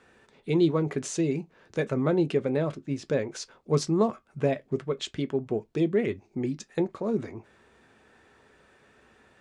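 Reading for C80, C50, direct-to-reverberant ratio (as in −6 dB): 42.0 dB, 30.0 dB, 11.0 dB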